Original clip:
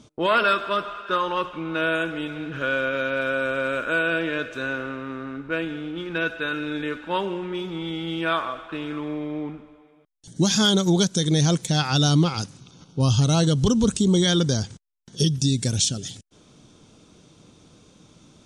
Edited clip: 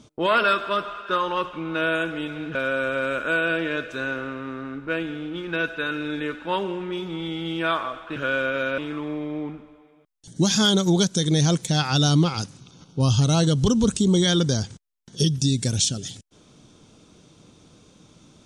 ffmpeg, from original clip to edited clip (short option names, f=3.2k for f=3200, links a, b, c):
-filter_complex "[0:a]asplit=4[a][b][c][d];[a]atrim=end=2.552[e];[b]atrim=start=3.168:end=8.782[f];[c]atrim=start=2.548:end=3.172[g];[d]atrim=start=8.778[h];[e][f]acrossfade=d=0.004:c1=hsin:c2=hsin[i];[i][g]acrossfade=d=0.004:c1=hsin:c2=hsin[j];[j][h]acrossfade=d=0.004:c1=hsin:c2=hsin"